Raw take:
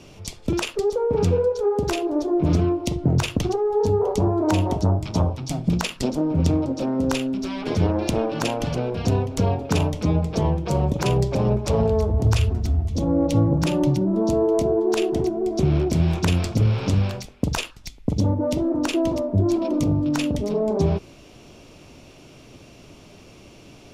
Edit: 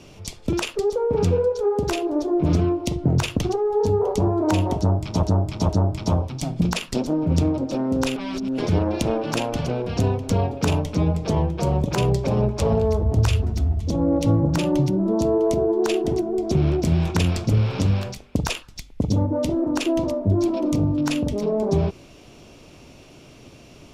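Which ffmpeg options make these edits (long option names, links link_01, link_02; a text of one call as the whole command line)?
ffmpeg -i in.wav -filter_complex "[0:a]asplit=5[link_01][link_02][link_03][link_04][link_05];[link_01]atrim=end=5.232[link_06];[link_02]atrim=start=4.768:end=5.232[link_07];[link_03]atrim=start=4.768:end=7.242[link_08];[link_04]atrim=start=7.238:end=7.662,asetpts=PTS-STARTPTS,areverse[link_09];[link_05]atrim=start=7.658[link_10];[link_06][link_07]acrossfade=duration=0.004:curve1=hsin:curve2=hsin[link_11];[link_11][link_08]acrossfade=duration=0.004:curve1=hsin:curve2=hsin[link_12];[link_12][link_09]acrossfade=duration=0.004:curve1=hsin:curve2=hsin[link_13];[link_13][link_10]acrossfade=duration=0.004:curve1=hsin:curve2=hsin" out.wav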